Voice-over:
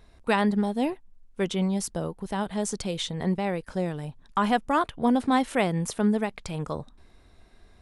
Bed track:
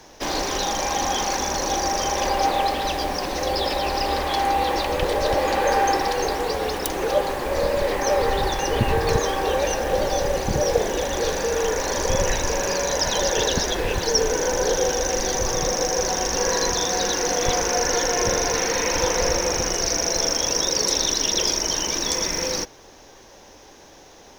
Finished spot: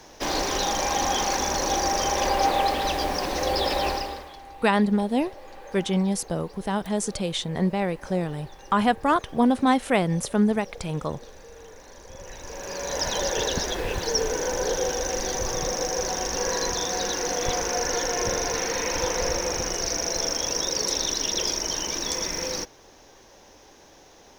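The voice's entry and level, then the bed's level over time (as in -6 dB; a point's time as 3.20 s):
4.35 s, +2.5 dB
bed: 3.89 s -1 dB
4.40 s -23.5 dB
12.08 s -23.5 dB
13.00 s -4.5 dB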